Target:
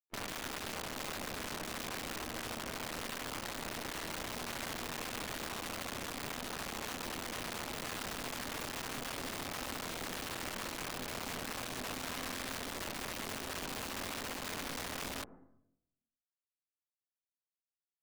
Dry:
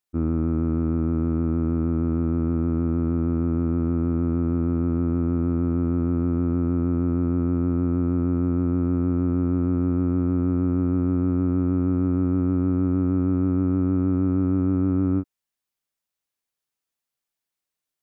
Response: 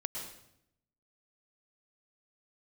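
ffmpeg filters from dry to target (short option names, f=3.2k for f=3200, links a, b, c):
-filter_complex "[0:a]aeval=exprs='(tanh(79.4*val(0)+0.45)-tanh(0.45))/79.4':c=same,asplit=4[a][b][c][d];[b]asetrate=29433,aresample=44100,atempo=1.49831,volume=-8dB[e];[c]asetrate=37084,aresample=44100,atempo=1.18921,volume=-1dB[f];[d]asetrate=66075,aresample=44100,atempo=0.66742,volume=-14dB[g];[a][e][f][g]amix=inputs=4:normalize=0,highpass=f=240:w=0.5412,highpass=f=240:w=1.3066,aeval=exprs='sgn(val(0))*max(abs(val(0))-0.00112,0)':c=same,asetrate=41625,aresample=44100,atempo=1.05946,aeval=exprs='0.0398*(cos(1*acos(clip(val(0)/0.0398,-1,1)))-cos(1*PI/2))+0.00631*(cos(6*acos(clip(val(0)/0.0398,-1,1)))-cos(6*PI/2))+0.00447*(cos(7*acos(clip(val(0)/0.0398,-1,1)))-cos(7*PI/2))':c=same,asplit=2[h][i];[i]lowpass=f=1.5k:w=0.5412,lowpass=f=1.5k:w=1.3066[j];[1:a]atrim=start_sample=2205[k];[j][k]afir=irnorm=-1:irlink=0,volume=-18dB[l];[h][l]amix=inputs=2:normalize=0,aeval=exprs='(mod(63.1*val(0)+1,2)-1)/63.1':c=same,volume=4dB"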